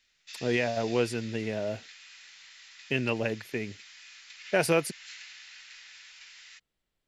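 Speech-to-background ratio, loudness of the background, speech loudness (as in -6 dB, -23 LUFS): 16.5 dB, -46.5 LUFS, -30.0 LUFS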